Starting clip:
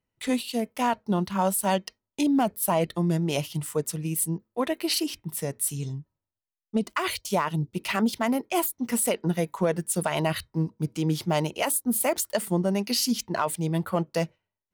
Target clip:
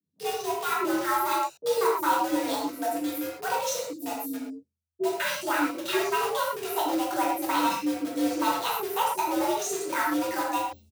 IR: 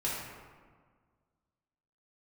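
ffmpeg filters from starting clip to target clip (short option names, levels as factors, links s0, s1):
-filter_complex "[0:a]asetrate=59535,aresample=44100,aemphasis=mode=reproduction:type=50fm,acrossover=split=370|4300[s0][s1][s2];[s1]acrusher=bits=5:mix=0:aa=0.000001[s3];[s0][s3][s2]amix=inputs=3:normalize=0,afreqshift=83,acrossover=split=410[s4][s5];[s5]adelay=40[s6];[s4][s6]amix=inputs=2:normalize=0[s7];[1:a]atrim=start_sample=2205,atrim=end_sample=6174[s8];[s7][s8]afir=irnorm=-1:irlink=0,areverse,acompressor=mode=upward:threshold=0.0316:ratio=2.5,areverse,highshelf=f=5500:g=7,volume=0.596"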